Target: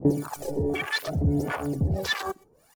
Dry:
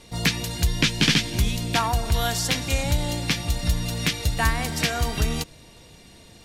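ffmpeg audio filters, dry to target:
-filter_complex "[0:a]asetrate=103194,aresample=44100,acrossover=split=400|3000[a][b][c];[b]acompressor=threshold=-37dB:ratio=1.5[d];[a][d][c]amix=inputs=3:normalize=0,volume=28dB,asoftclip=hard,volume=-28dB,acrossover=split=690[e][f];[e]aeval=exprs='val(0)*(1-1/2+1/2*cos(2*PI*1.6*n/s))':c=same[g];[f]aeval=exprs='val(0)*(1-1/2-1/2*cos(2*PI*1.6*n/s))':c=same[h];[g][h]amix=inputs=2:normalize=0,aphaser=in_gain=1:out_gain=1:delay=2.8:decay=0.66:speed=0.65:type=sinusoidal,asetrate=46722,aresample=44100,atempo=0.943874,lowshelf=f=61:g=-10,asplit=2[i][j];[j]adelay=122.4,volume=-16dB,highshelf=f=4k:g=-2.76[k];[i][k]amix=inputs=2:normalize=0,afwtdn=0.0158,adynamicequalizer=threshold=0.00398:dfrequency=1800:dqfactor=0.7:tfrequency=1800:tqfactor=0.7:attack=5:release=100:ratio=0.375:range=2.5:mode=cutabove:tftype=highshelf,volume=8dB"

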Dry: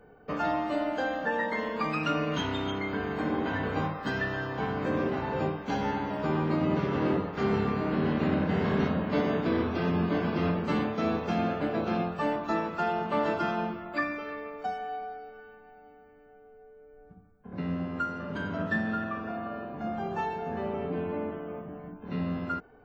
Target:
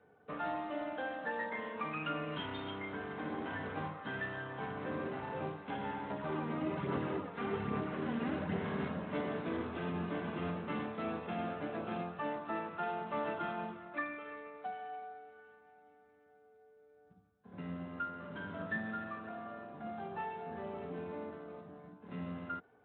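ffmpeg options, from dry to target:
-filter_complex "[0:a]equalizer=f=230:t=o:w=2.8:g=-4,asettb=1/sr,asplit=3[a][b][c];[a]atrim=end=6.104[d];[b]atrim=start=6.1:end=8.57,asetpts=PTS-STARTPTS,afade=t=in:d=0.004:c=qsin,afade=t=out:st=2.466:d=0.004:c=qsin,aphaser=in_gain=1:out_gain=1:delay=4.4:decay=0.43:speed=1.2:type=sinusoidal[e];[c]atrim=start=8.566[f];[d][e]acrossfade=d=0.004:c1=hsin:c2=qsin[g];[g][f]acrossfade=d=0.004:c1=qsin:c2=hsin,volume=-7.5dB" -ar 8000 -c:a libspeex -b:a 24k

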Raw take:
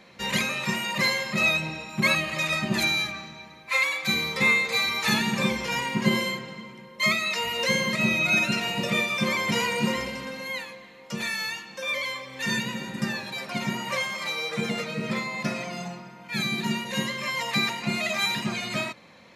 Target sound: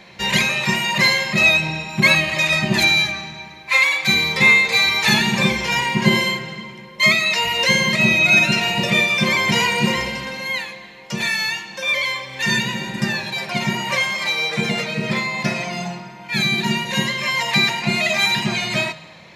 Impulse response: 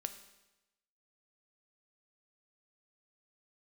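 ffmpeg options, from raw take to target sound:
-filter_complex "[0:a]equalizer=f=250:t=o:w=0.33:g=-11,equalizer=f=500:t=o:w=0.33:g=-7,equalizer=f=1.25k:t=o:w=0.33:g=-8,acontrast=43,asplit=2[a][b];[1:a]atrim=start_sample=2205,asetrate=34839,aresample=44100,lowpass=7.7k[c];[b][c]afir=irnorm=-1:irlink=0,volume=-4dB[d];[a][d]amix=inputs=2:normalize=0"

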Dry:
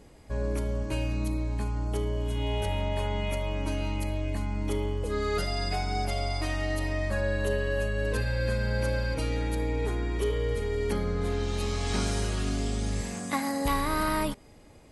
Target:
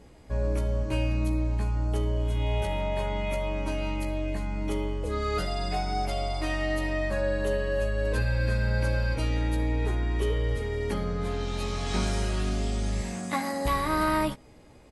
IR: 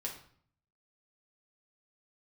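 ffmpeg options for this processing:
-filter_complex "[0:a]highshelf=f=6.6k:g=-5.5,asplit=2[a][b];[b]adelay=16,volume=-6dB[c];[a][c]amix=inputs=2:normalize=0"

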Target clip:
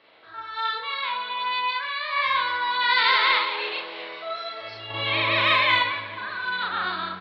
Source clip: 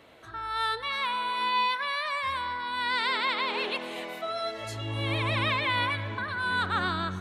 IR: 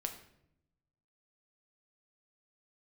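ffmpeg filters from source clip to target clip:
-filter_complex "[0:a]highpass=f=750:p=1,asplit=3[a][b][c];[a]afade=t=out:st=2.12:d=0.02[d];[b]acontrast=75,afade=t=in:st=2.12:d=0.02,afade=t=out:st=3.38:d=0.02[e];[c]afade=t=in:st=3.38:d=0.02[f];[d][e][f]amix=inputs=3:normalize=0,aresample=11025,aresample=44100,asettb=1/sr,asplit=3[g][h][i];[g]atrim=end=4.904[j];[h]atrim=start=4.9:end=5.79,asetpts=PTS-STARTPTS,afade=t=in:d=0.004:c=qsin,afade=t=out:st=0.886:d=0.004:c=qsin,acontrast=72[k];[i]atrim=start=5.786[l];[j][k]acrossfade=d=0.004:c1=hsin:c2=qsin[m];[m][l]acrossfade=d=0.004:c1=qsin:c2=hsin,asplit=5[n][o][p][q][r];[o]adelay=443,afreqshift=45,volume=-24dB[s];[p]adelay=886,afreqshift=90,volume=-28.6dB[t];[q]adelay=1329,afreqshift=135,volume=-33.2dB[u];[r]adelay=1772,afreqshift=180,volume=-37.7dB[v];[n][s][t][u][v]amix=inputs=5:normalize=0,asplit=2[w][x];[1:a]atrim=start_sample=2205,adelay=38[y];[x][y]afir=irnorm=-1:irlink=0,volume=2.5dB[z];[w][z]amix=inputs=2:normalize=0,volume=-1.5dB"

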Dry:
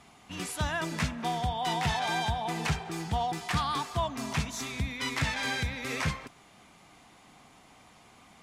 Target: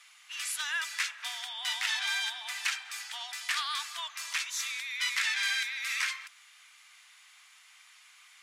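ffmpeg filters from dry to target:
-af "highpass=f=1.5k:w=0.5412,highpass=f=1.5k:w=1.3066,volume=4dB"

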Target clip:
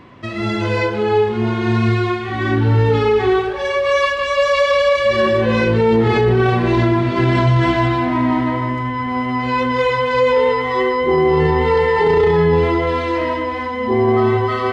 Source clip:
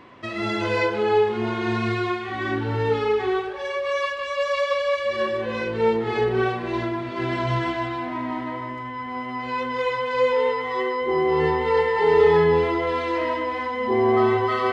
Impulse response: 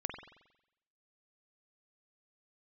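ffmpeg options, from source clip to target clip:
-af "bass=f=250:g=9,treble=f=4k:g=1,dynaudnorm=f=690:g=9:m=11.5dB,alimiter=limit=-9.5dB:level=0:latency=1:release=11,volume=2.5dB"

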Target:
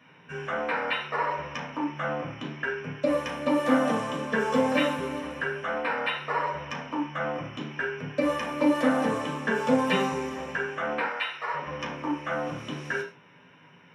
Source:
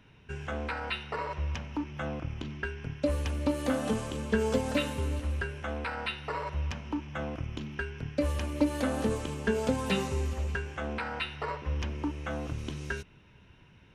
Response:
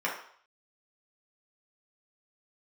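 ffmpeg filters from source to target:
-filter_complex "[0:a]asettb=1/sr,asplit=3[a][b][c];[a]atrim=end=11.054[d];[b]atrim=start=11.05:end=11.54,asetpts=PTS-STARTPTS,afade=t=in:d=0.004:c=qsin,afade=t=out:st=0.486:d=0.004:c=qsin,highpass=f=1.1k:p=1[e];[c]atrim=start=11.536[f];[d][e]acrossfade=d=0.004:c1=hsin:c2=qsin[g];[g][f]acrossfade=d=0.004:c1=qsin:c2=hsin[h];[1:a]atrim=start_sample=2205,afade=t=out:st=0.19:d=0.01,atrim=end_sample=8820[i];[h][i]afir=irnorm=-1:irlink=0,volume=-1dB"

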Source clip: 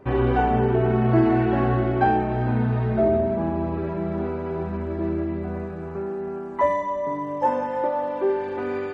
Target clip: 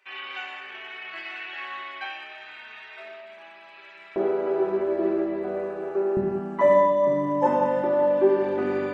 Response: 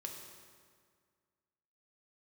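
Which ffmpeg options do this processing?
-filter_complex "[0:a]asetnsamples=n=441:p=0,asendcmd='4.16 highpass f 420;6.17 highpass f 180',highpass=f=2.5k:t=q:w=2.2[a];[1:a]atrim=start_sample=2205,afade=t=out:st=0.28:d=0.01,atrim=end_sample=12789[b];[a][b]afir=irnorm=-1:irlink=0,volume=3.5dB"

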